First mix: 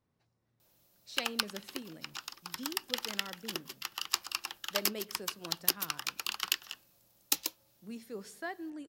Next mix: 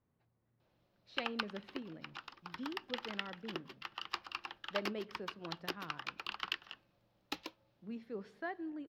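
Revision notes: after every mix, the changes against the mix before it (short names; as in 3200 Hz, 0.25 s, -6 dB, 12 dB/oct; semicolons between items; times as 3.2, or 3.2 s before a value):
master: add air absorption 330 m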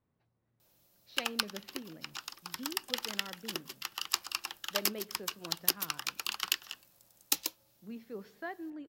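speech: add air absorption 240 m; second sound +10.5 dB; master: remove air absorption 330 m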